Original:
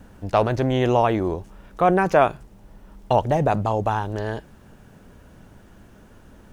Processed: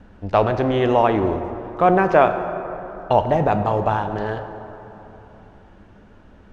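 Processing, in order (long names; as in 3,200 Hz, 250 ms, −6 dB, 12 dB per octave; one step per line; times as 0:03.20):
low-pass filter 3,700 Hz 12 dB per octave
in parallel at −11 dB: dead-zone distortion −38 dBFS
on the sum: parametric band 140 Hz −3.5 dB 0.59 octaves
dense smooth reverb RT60 3.4 s, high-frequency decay 0.45×, DRR 8 dB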